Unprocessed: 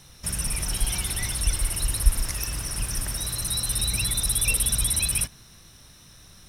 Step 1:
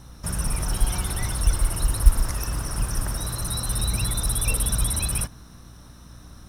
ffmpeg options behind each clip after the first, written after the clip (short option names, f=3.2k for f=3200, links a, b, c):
-af "highshelf=f=1.7k:t=q:w=1.5:g=-7.5,acrusher=bits=8:mode=log:mix=0:aa=0.000001,aeval=exprs='val(0)+0.00316*(sin(2*PI*60*n/s)+sin(2*PI*2*60*n/s)/2+sin(2*PI*3*60*n/s)/3+sin(2*PI*4*60*n/s)/4+sin(2*PI*5*60*n/s)/5)':c=same,volume=4.5dB"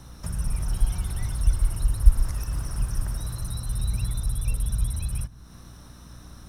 -filter_complex "[0:a]acrossover=split=160[a][b];[b]acompressor=threshold=-42dB:ratio=3[c];[a][c]amix=inputs=2:normalize=0"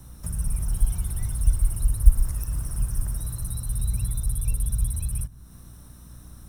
-filter_complex "[0:a]lowshelf=f=280:g=7.5,acrossover=split=700|4300[a][b][c];[c]aexciter=amount=3.8:drive=5.2:freq=7.3k[d];[a][b][d]amix=inputs=3:normalize=0,volume=-6.5dB"